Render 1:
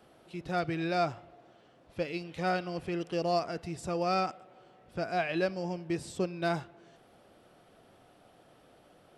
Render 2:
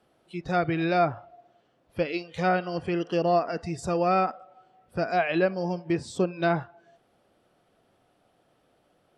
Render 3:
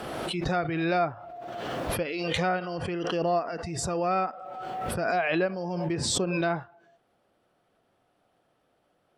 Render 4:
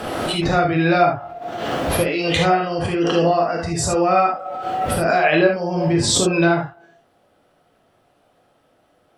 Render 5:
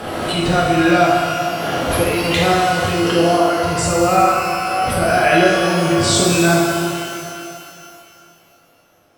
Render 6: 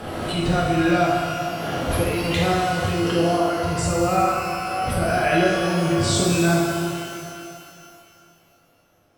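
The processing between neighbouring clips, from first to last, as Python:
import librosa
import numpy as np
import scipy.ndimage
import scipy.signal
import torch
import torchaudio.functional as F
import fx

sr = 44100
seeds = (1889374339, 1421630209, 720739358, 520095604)

y1 = fx.env_lowpass_down(x, sr, base_hz=2400.0, full_db=-25.5)
y1 = fx.noise_reduce_blind(y1, sr, reduce_db=13)
y1 = F.gain(torch.from_numpy(y1), 6.5).numpy()
y2 = fx.peak_eq(y1, sr, hz=1200.0, db=3.0, octaves=2.1)
y2 = fx.pre_swell(y2, sr, db_per_s=23.0)
y2 = F.gain(torch.from_numpy(y2), -5.5).numpy()
y3 = fx.rev_gated(y2, sr, seeds[0], gate_ms=100, shape='flat', drr_db=0.0)
y3 = F.gain(torch.from_numpy(y3), 7.0).numpy()
y4 = fx.rev_shimmer(y3, sr, seeds[1], rt60_s=2.6, semitones=12, shimmer_db=-8, drr_db=0.5)
y5 = fx.low_shelf(y4, sr, hz=190.0, db=8.0)
y5 = F.gain(torch.from_numpy(y5), -7.0).numpy()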